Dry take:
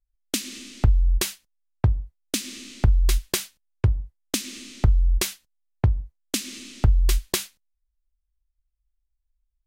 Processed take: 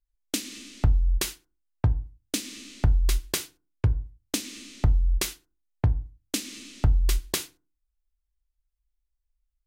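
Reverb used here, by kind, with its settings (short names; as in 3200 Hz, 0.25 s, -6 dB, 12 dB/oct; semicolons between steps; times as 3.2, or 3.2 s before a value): FDN reverb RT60 0.32 s, low-frequency decay 1.3×, high-frequency decay 0.3×, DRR 12.5 dB; gain -3 dB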